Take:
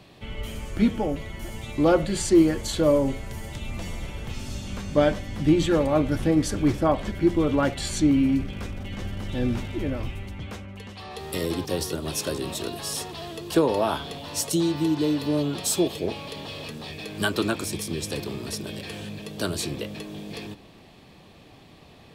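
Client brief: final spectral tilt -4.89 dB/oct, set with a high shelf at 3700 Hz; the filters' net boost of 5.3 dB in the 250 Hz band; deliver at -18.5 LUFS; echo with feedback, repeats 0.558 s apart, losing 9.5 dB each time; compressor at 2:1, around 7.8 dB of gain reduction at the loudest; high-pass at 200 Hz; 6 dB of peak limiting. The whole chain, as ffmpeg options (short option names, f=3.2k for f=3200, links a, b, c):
-af "highpass=200,equalizer=f=250:t=o:g=8.5,highshelf=f=3.7k:g=-4,acompressor=threshold=-24dB:ratio=2,alimiter=limit=-16.5dB:level=0:latency=1,aecho=1:1:558|1116|1674|2232:0.335|0.111|0.0365|0.012,volume=9.5dB"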